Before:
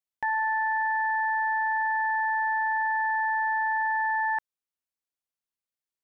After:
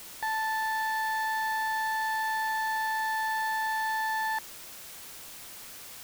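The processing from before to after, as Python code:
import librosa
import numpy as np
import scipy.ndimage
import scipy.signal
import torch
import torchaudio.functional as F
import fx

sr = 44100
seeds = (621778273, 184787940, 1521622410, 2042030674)

y = np.clip(x, -10.0 ** (-24.5 / 20.0), 10.0 ** (-24.5 / 20.0))
y = fx.dmg_noise_colour(y, sr, seeds[0], colour='white', level_db=-43.0)
y = y * librosa.db_to_amplitude(-2.0)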